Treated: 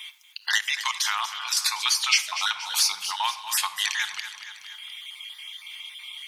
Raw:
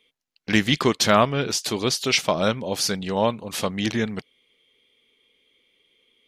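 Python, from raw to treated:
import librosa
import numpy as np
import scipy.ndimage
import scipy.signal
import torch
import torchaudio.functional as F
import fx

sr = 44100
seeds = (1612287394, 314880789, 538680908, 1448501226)

p1 = fx.spec_dropout(x, sr, seeds[0], share_pct=25)
p2 = scipy.signal.sosfilt(scipy.signal.ellip(4, 1.0, 40, 880.0, 'highpass', fs=sr, output='sos'), p1)
p3 = fx.high_shelf(p2, sr, hz=4600.0, db=8.5)
p4 = fx.room_shoebox(p3, sr, seeds[1], volume_m3=1900.0, walls='furnished', distance_m=0.93)
p5 = fx.level_steps(p4, sr, step_db=14, at=(0.58, 1.57))
p6 = p5 + fx.echo_feedback(p5, sr, ms=235, feedback_pct=33, wet_db=-15, dry=0)
p7 = fx.band_squash(p6, sr, depth_pct=70)
y = p7 * librosa.db_to_amplitude(2.0)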